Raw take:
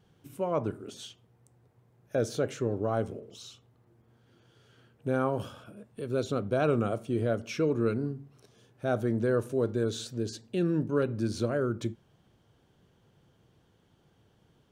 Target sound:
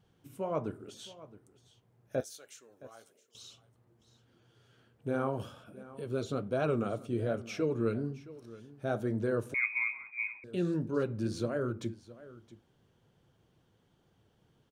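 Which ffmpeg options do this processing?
-filter_complex "[0:a]asettb=1/sr,asplit=3[a][b][c];[a]atrim=end=2.204[d];[b]atrim=start=2.2:end=3.35,asetpts=PTS-STARTPTS,afade=t=in:d=0.004:c=qsin,afade=t=out:st=1.146:d=0.004:c=qsin,aderivative[e];[c]atrim=start=3.346[f];[d][e]acrossfade=d=0.004:c1=hsin:c2=qsin[g];[g][f]acrossfade=d=0.004:c1=qsin:c2=hsin,flanger=delay=0.8:depth=9.1:regen=-57:speed=1.2:shape=triangular,aecho=1:1:668:0.126,asettb=1/sr,asplit=3[h][i][j];[h]atrim=end=9.544[k];[i]atrim=start=9.54:end=10.44,asetpts=PTS-STARTPTS,afade=t=in:d=0.004:c=qsin,afade=t=out:st=0.896:d=0.004:c=qsin,lowpass=f=2.2k:t=q:w=0.5098,lowpass=f=2.2k:t=q:w=0.6013,lowpass=f=2.2k:t=q:w=0.9,lowpass=f=2.2k:t=q:w=2.563,afreqshift=-2600[l];[j]atrim=start=10.436[m];[k][l]acrossfade=d=0.004:c1=hsin:c2=qsin[n];[n][m]acrossfade=d=0.004:c1=qsin:c2=hsin"

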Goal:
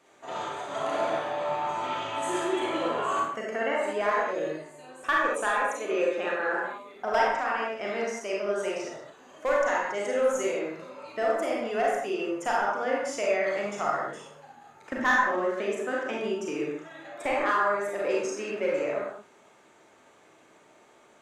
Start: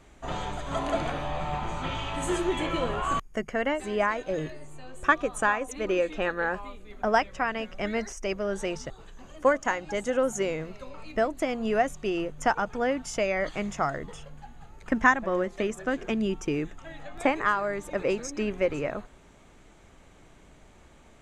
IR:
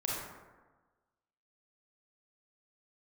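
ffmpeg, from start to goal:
-filter_complex "[0:a]highpass=330,acrossover=split=1500[a][b];[a]asoftclip=type=hard:threshold=-19.5dB[c];[c][b]amix=inputs=2:normalize=0[d];[1:a]atrim=start_sample=2205,afade=t=out:st=0.28:d=0.01,atrim=end_sample=12789[e];[d][e]afir=irnorm=-1:irlink=0,volume=-3.5dB"

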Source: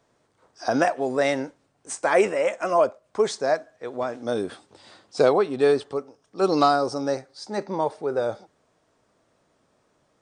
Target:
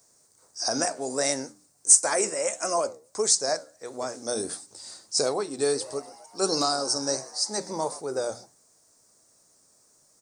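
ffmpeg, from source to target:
-filter_complex "[0:a]bandreject=f=60:t=h:w=6,bandreject=f=120:t=h:w=6,bandreject=f=180:t=h:w=6,bandreject=f=240:t=h:w=6,bandreject=f=300:t=h:w=6,alimiter=limit=-12dB:level=0:latency=1:release=474,flanger=delay=6.7:depth=7.8:regen=-80:speed=1.5:shape=triangular,aexciter=amount=12.2:drive=5.7:freq=4.8k,asplit=3[a][b][c];[a]afade=t=out:st=5.8:d=0.02[d];[b]asplit=7[e][f][g][h][i][j][k];[f]adelay=125,afreqshift=97,volume=-18.5dB[l];[g]adelay=250,afreqshift=194,volume=-22.2dB[m];[h]adelay=375,afreqshift=291,volume=-26dB[n];[i]adelay=500,afreqshift=388,volume=-29.7dB[o];[j]adelay=625,afreqshift=485,volume=-33.5dB[p];[k]adelay=750,afreqshift=582,volume=-37.2dB[q];[e][l][m][n][o][p][q]amix=inputs=7:normalize=0,afade=t=in:st=5.8:d=0.02,afade=t=out:st=7.99:d=0.02[r];[c]afade=t=in:st=7.99:d=0.02[s];[d][r][s]amix=inputs=3:normalize=0"

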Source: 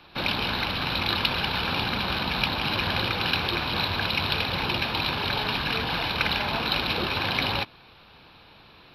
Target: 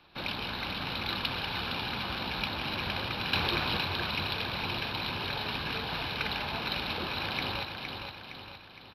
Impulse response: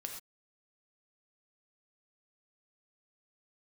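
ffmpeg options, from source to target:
-filter_complex "[0:a]asplit=3[a][b][c];[a]afade=t=out:st=3.32:d=0.02[d];[b]acontrast=39,afade=t=in:st=3.32:d=0.02,afade=t=out:st=3.76:d=0.02[e];[c]afade=t=in:st=3.76:d=0.02[f];[d][e][f]amix=inputs=3:normalize=0,aecho=1:1:463|926|1389|1852|2315|2778:0.501|0.251|0.125|0.0626|0.0313|0.0157,volume=-8.5dB"

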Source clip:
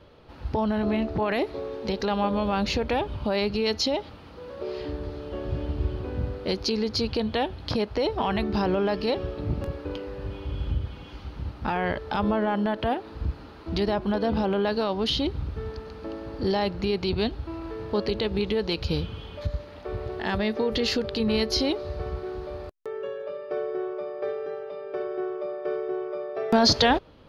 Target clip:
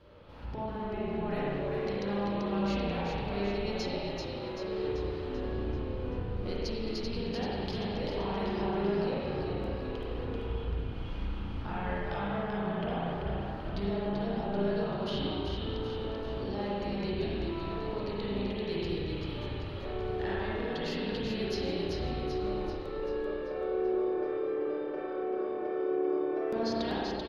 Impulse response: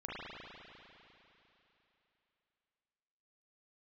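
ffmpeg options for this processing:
-filter_complex "[0:a]acompressor=threshold=-32dB:ratio=6,asplit=8[a][b][c][d][e][f][g][h];[b]adelay=387,afreqshift=-35,volume=-4dB[i];[c]adelay=774,afreqshift=-70,volume=-9.2dB[j];[d]adelay=1161,afreqshift=-105,volume=-14.4dB[k];[e]adelay=1548,afreqshift=-140,volume=-19.6dB[l];[f]adelay=1935,afreqshift=-175,volume=-24.8dB[m];[g]adelay=2322,afreqshift=-210,volume=-30dB[n];[h]adelay=2709,afreqshift=-245,volume=-35.2dB[o];[a][i][j][k][l][m][n][o]amix=inputs=8:normalize=0[p];[1:a]atrim=start_sample=2205,afade=t=out:st=0.35:d=0.01,atrim=end_sample=15876[q];[p][q]afir=irnorm=-1:irlink=0,volume=-1.5dB"

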